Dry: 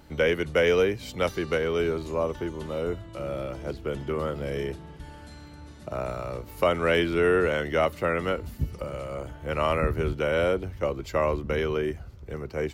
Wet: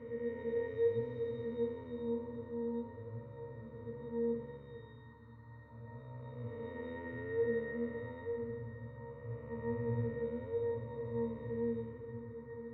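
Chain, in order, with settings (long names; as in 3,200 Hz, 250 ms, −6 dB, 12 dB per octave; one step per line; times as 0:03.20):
spectrum smeared in time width 676 ms
noise in a band 1,000–1,700 Hz −46 dBFS
resonances in every octave A#, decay 0.48 s
level +7 dB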